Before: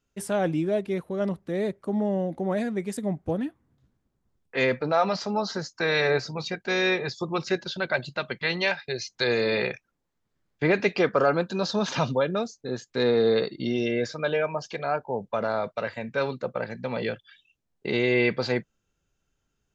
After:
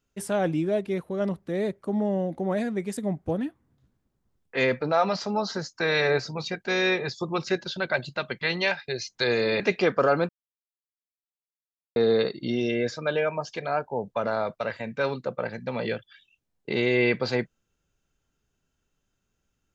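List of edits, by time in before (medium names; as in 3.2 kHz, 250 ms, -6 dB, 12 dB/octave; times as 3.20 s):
9.60–10.77 s: delete
11.46–13.13 s: mute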